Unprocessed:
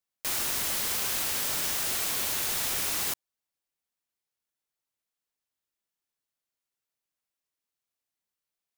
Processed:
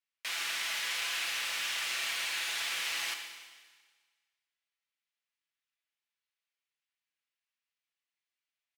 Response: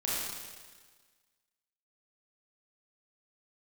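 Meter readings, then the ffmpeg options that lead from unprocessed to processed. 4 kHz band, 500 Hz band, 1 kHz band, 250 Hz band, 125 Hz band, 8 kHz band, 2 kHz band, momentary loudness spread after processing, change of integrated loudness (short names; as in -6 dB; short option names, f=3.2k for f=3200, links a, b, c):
0.0 dB, -11.0 dB, -4.0 dB, -17.0 dB, under -20 dB, -9.0 dB, +3.0 dB, 5 LU, -5.5 dB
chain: -filter_complex "[0:a]bandpass=f=2.4k:t=q:w=1.4:csg=0,aecho=1:1:6:0.41,volume=30dB,asoftclip=hard,volume=-30dB,asplit=2[a][b];[1:a]atrim=start_sample=2205[c];[b][c]afir=irnorm=-1:irlink=0,volume=-8dB[d];[a][d]amix=inputs=2:normalize=0"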